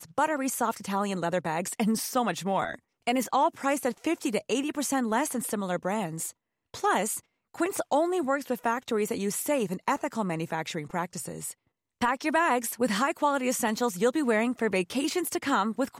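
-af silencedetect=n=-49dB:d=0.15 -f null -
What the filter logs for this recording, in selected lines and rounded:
silence_start: 2.79
silence_end: 3.07 | silence_duration: 0.28
silence_start: 6.31
silence_end: 6.74 | silence_duration: 0.43
silence_start: 7.20
silence_end: 7.54 | silence_duration: 0.34
silence_start: 11.53
silence_end: 12.01 | silence_duration: 0.48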